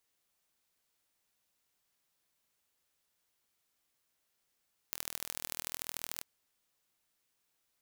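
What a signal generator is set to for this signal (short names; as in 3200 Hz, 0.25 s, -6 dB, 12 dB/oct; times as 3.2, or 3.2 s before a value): pulse train 40.5/s, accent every 3, -8.5 dBFS 1.30 s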